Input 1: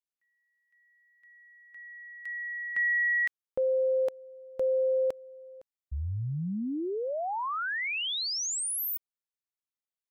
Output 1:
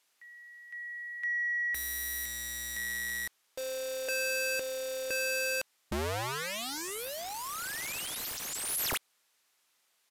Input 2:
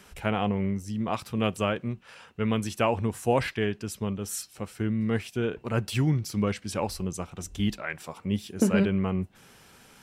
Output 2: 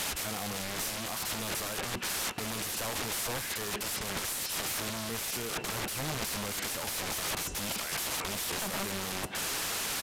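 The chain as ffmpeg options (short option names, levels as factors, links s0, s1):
-filter_complex "[0:a]asplit=2[s0][s1];[s1]highpass=f=720:p=1,volume=79.4,asoftclip=type=tanh:threshold=0.335[s2];[s0][s2]amix=inputs=2:normalize=0,lowpass=f=7300:p=1,volume=0.501,aeval=exprs='(mod(12.6*val(0)+1,2)-1)/12.6':c=same,aresample=32000,aresample=44100,volume=0.501"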